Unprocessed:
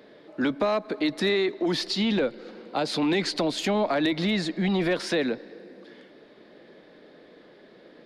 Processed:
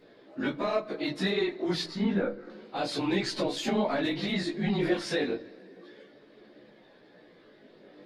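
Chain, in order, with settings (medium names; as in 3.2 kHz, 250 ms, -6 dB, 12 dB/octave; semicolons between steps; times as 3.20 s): phase randomisation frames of 50 ms; 1.84–2.50 s: resonant high shelf 2.2 kHz -10 dB, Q 1.5; chorus voices 2, 0.31 Hz, delay 17 ms, depth 3.3 ms; on a send: reverberation RT60 0.40 s, pre-delay 5 ms, DRR 13 dB; on the sum: trim -1 dB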